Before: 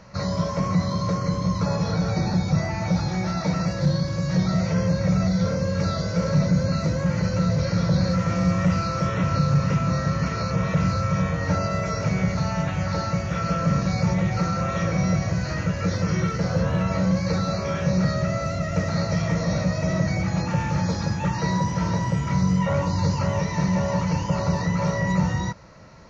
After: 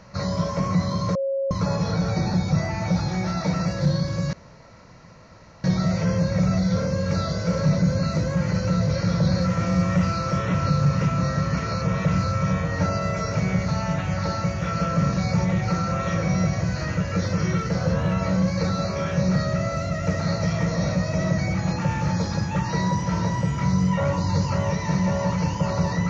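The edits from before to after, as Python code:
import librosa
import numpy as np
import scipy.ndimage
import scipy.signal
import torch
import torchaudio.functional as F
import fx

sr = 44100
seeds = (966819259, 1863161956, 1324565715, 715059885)

y = fx.edit(x, sr, fx.bleep(start_s=1.15, length_s=0.36, hz=545.0, db=-21.5),
    fx.insert_room_tone(at_s=4.33, length_s=1.31), tone=tone)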